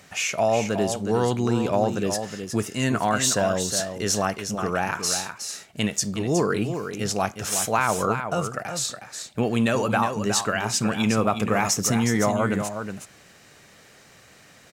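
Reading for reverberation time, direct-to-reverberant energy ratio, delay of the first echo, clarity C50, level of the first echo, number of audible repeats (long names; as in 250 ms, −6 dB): no reverb audible, no reverb audible, 365 ms, no reverb audible, −8.0 dB, 1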